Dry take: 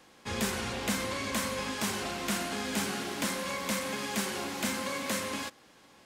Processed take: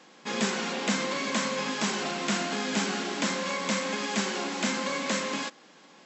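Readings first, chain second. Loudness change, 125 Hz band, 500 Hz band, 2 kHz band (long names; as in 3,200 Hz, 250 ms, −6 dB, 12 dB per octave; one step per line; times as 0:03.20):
+3.5 dB, +1.5 dB, +4.0 dB, +4.0 dB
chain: brick-wall band-pass 150–7,900 Hz
level +4 dB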